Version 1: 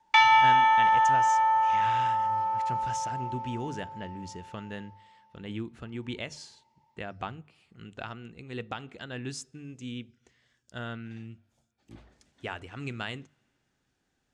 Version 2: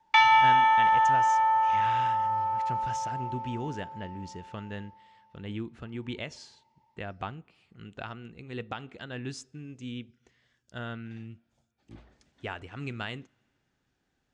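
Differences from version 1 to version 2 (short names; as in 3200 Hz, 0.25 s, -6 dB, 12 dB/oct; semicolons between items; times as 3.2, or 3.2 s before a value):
speech: remove notches 50/100/150 Hz; master: add air absorption 54 m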